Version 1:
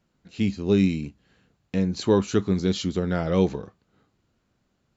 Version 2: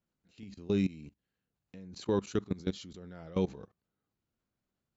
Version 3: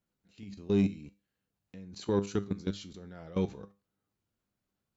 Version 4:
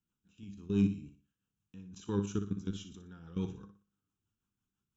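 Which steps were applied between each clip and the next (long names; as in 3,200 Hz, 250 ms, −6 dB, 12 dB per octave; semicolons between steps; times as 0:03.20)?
output level in coarse steps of 20 dB; level −7 dB
tuned comb filter 100 Hz, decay 0.3 s, harmonics all, mix 60%; in parallel at −5 dB: soft clipping −31 dBFS, distortion −10 dB; on the sum: level +2.5 dB
phaser with its sweep stopped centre 3,000 Hz, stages 8; rotating-speaker cabinet horn 6 Hz; on a send: flutter between parallel walls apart 10.2 metres, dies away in 0.36 s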